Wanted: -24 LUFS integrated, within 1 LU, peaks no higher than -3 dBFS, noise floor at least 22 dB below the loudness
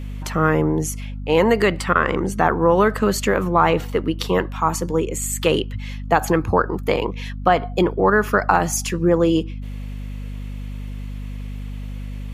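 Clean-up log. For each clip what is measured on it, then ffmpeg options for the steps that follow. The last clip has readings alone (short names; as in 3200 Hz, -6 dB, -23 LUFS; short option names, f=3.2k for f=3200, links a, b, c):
hum 50 Hz; harmonics up to 250 Hz; hum level -27 dBFS; loudness -19.5 LUFS; peak -1.5 dBFS; loudness target -24.0 LUFS
-> -af "bandreject=f=50:t=h:w=6,bandreject=f=100:t=h:w=6,bandreject=f=150:t=h:w=6,bandreject=f=200:t=h:w=6,bandreject=f=250:t=h:w=6"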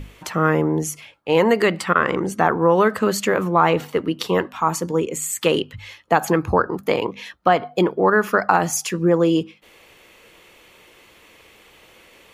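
hum none; loudness -20.0 LUFS; peak -1.5 dBFS; loudness target -24.0 LUFS
-> -af "volume=-4dB"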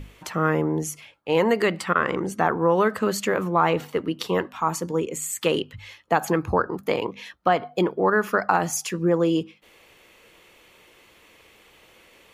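loudness -24.0 LUFS; peak -5.5 dBFS; noise floor -55 dBFS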